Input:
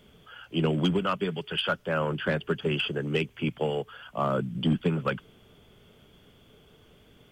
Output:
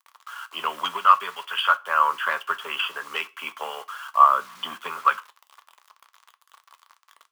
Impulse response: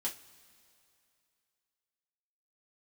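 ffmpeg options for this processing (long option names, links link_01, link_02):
-filter_complex "[0:a]acrusher=bits=7:mix=0:aa=0.000001,highpass=frequency=1100:width_type=q:width=7.2,asplit=2[link_01][link_02];[1:a]atrim=start_sample=2205,afade=type=out:start_time=0.19:duration=0.01,atrim=end_sample=8820[link_03];[link_02][link_03]afir=irnorm=-1:irlink=0,volume=-8dB[link_04];[link_01][link_04]amix=inputs=2:normalize=0"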